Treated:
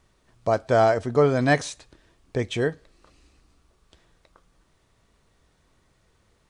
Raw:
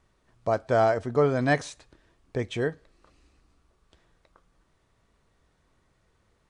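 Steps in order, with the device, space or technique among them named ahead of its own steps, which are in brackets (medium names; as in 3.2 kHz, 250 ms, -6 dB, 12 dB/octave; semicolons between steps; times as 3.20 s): exciter from parts (in parallel at -6.5 dB: high-pass 2.1 kHz 12 dB/octave + saturation -29 dBFS, distortion -13 dB); on the sum: trim +3.5 dB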